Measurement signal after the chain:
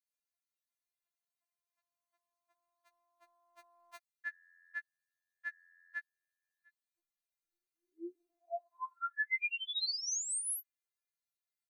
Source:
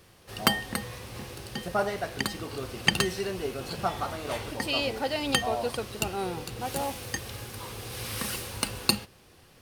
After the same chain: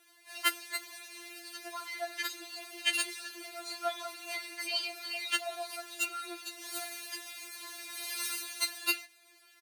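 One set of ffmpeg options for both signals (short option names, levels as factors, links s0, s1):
-af "highpass=840,aecho=1:1:6.3:0.47,afftfilt=real='re*4*eq(mod(b,16),0)':imag='im*4*eq(mod(b,16),0)':win_size=2048:overlap=0.75"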